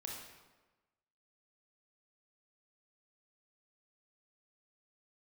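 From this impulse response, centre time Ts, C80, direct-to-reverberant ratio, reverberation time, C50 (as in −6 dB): 61 ms, 4.0 dB, −1.5 dB, 1.2 s, 1.5 dB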